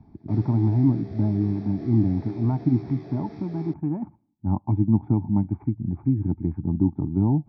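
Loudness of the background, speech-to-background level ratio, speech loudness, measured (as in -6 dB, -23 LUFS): -41.5 LUFS, 17.0 dB, -24.5 LUFS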